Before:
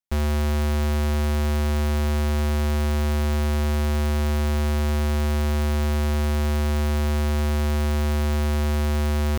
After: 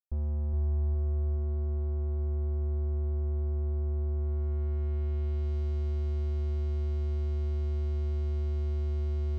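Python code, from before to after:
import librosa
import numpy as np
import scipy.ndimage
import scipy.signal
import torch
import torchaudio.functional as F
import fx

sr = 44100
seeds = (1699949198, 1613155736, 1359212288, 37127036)

p1 = fx.curve_eq(x, sr, hz=(150.0, 1500.0, 7700.0), db=(0, -25, -19))
p2 = p1 + fx.echo_feedback(p1, sr, ms=415, feedback_pct=56, wet_db=-3.5, dry=0)
p3 = fx.filter_sweep_lowpass(p2, sr, from_hz=960.0, to_hz=4200.0, start_s=4.13, end_s=5.56, q=1.0)
p4 = fx.peak_eq(p3, sr, hz=160.0, db=-11.0, octaves=1.5)
y = p4 * librosa.db_to_amplitude(-4.0)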